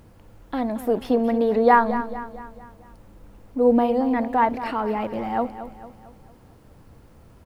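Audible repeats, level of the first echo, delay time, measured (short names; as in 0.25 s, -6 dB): 4, -12.5 dB, 0.225 s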